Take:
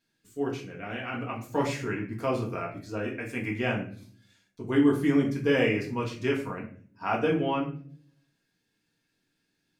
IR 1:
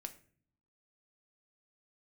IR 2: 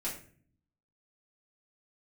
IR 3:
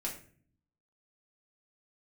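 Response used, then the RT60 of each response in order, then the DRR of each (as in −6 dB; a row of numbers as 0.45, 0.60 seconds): 3; 0.50, 0.45, 0.45 seconds; 6.5, −7.5, −3.0 decibels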